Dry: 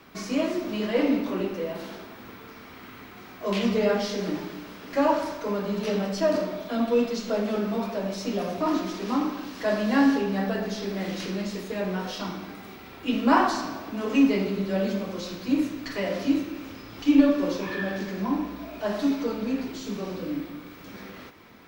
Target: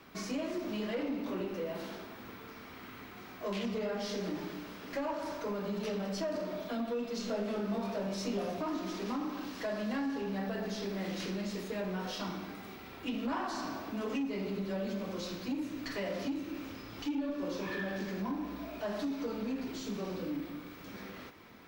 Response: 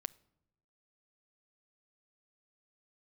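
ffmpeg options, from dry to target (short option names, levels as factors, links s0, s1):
-filter_complex "[0:a]acompressor=threshold=0.0447:ratio=4,asoftclip=type=tanh:threshold=0.0631,asettb=1/sr,asplit=3[s0][s1][s2];[s0]atrim=end=7.174[s3];[s1]atrim=start=7.17:end=8.5,asetpts=PTS-STARTPTS,afade=t=in:d=0.004:c=qsin,afade=t=out:st=1.326:d=0.004:c=qsin,asplit=2[s4][s5];[s5]adelay=25,volume=0.501[s6];[s4][s6]amix=inputs=2:normalize=0,atrim=end_sample=58653[s7];[s2]atrim=start=8.496[s8];[s3][s7]acrossfade=d=0.004:c1=hsin:c2=qsin[s9];[s9][s8]acrossfade=d=0.004:c1=qsin:c2=hsin,volume=0.631"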